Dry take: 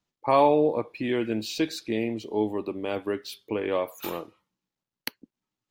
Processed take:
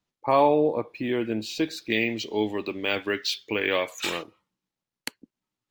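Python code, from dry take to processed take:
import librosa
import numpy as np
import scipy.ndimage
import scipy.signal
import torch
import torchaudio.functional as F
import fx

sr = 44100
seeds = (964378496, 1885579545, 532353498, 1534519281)

y = fx.band_shelf(x, sr, hz=3400.0, db=13.0, octaves=2.6, at=(1.89, 4.22), fade=0.02)
y = np.interp(np.arange(len(y)), np.arange(len(y))[::2], y[::2])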